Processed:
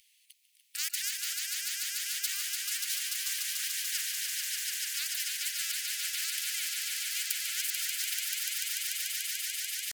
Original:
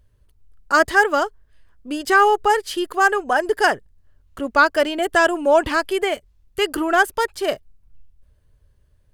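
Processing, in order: steep high-pass 2100 Hz 72 dB/oct; dynamic EQ 6400 Hz, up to +7 dB, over -45 dBFS, Q 2; tempo 0.92×; on a send: swelling echo 0.146 s, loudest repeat 5, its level -8.5 dB; on the sum: spectral compressor 4:1

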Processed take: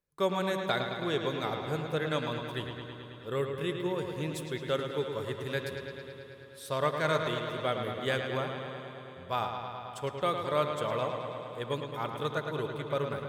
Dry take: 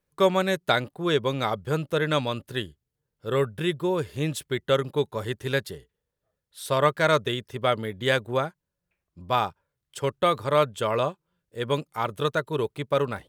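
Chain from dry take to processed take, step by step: analogue delay 0.108 s, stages 4096, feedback 77%, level -7 dB; on a send at -12.5 dB: reverb RT60 5.3 s, pre-delay 6 ms; on the sum: gain -8.5 dB

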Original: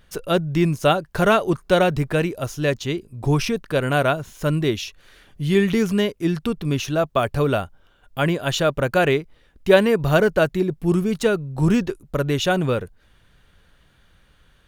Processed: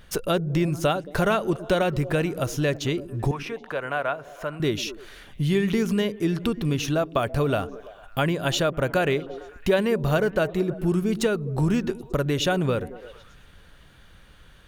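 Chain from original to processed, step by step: compressor 2.5:1, threshold -29 dBFS, peak gain reduction 13.5 dB; 3.31–4.6 three-band isolator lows -15 dB, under 530 Hz, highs -15 dB, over 2500 Hz; on a send: delay with a stepping band-pass 0.111 s, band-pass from 220 Hz, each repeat 0.7 oct, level -10.5 dB; on the sum: gain +5 dB

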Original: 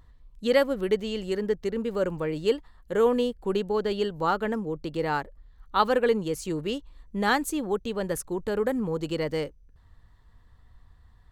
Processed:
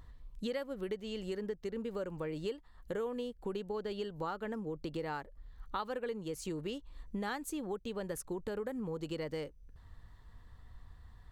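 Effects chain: compressor 5:1, threshold -38 dBFS, peak gain reduction 19.5 dB; gain +1 dB

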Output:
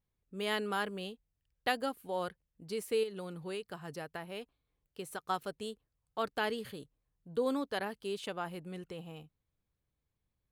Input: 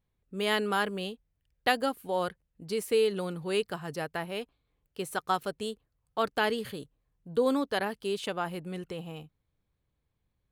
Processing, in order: 3.03–5.3 compressor 6:1, threshold -31 dBFS, peak gain reduction 8 dB; gain -6 dB

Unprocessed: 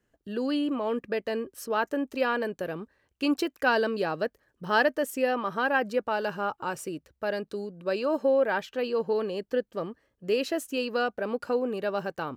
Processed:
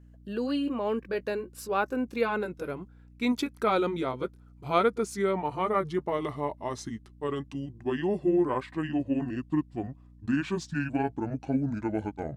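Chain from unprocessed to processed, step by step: gliding pitch shift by -11 st starting unshifted; hum 60 Hz, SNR 23 dB

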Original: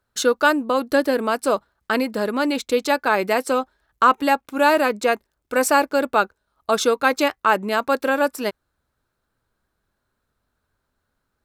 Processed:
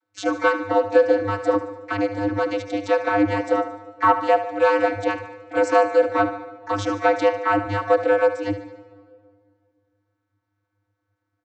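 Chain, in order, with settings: harmoniser -4 st -17 dB, +7 st -11 dB; frequency shift -64 Hz; vocoder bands 32, square 101 Hz; feedback echo 74 ms, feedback 55%, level -12 dB; on a send at -18.5 dB: reverb RT60 2.2 s, pre-delay 85 ms

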